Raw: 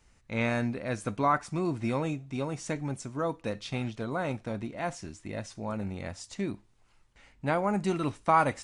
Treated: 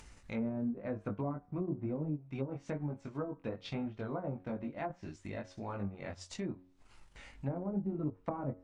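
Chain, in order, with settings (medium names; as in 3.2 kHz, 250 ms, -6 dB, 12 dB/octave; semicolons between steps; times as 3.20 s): chorus 1 Hz, delay 19.5 ms, depth 2.6 ms; low-pass that closes with the level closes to 390 Hz, closed at -29 dBFS; in parallel at -0.5 dB: upward compressor, threshold -34 dBFS; on the sum: de-hum 91.73 Hz, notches 19; transient shaper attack 0 dB, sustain -6 dB; trim -7 dB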